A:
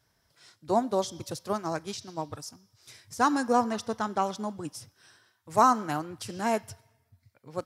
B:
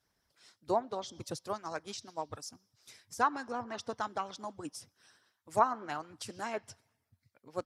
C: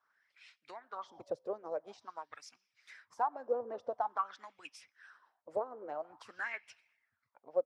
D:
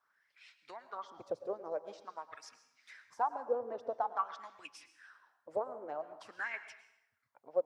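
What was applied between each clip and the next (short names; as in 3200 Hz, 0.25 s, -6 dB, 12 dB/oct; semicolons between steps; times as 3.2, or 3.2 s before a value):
treble ducked by the level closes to 2300 Hz, closed at -19.5 dBFS; harmonic-percussive split harmonic -13 dB; gain -2.5 dB
compressor 2.5:1, threshold -40 dBFS, peak gain reduction 13.5 dB; wah 0.48 Hz 470–2500 Hz, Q 6.1; gain +14.5 dB
plate-style reverb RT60 0.81 s, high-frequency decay 0.85×, pre-delay 95 ms, DRR 12 dB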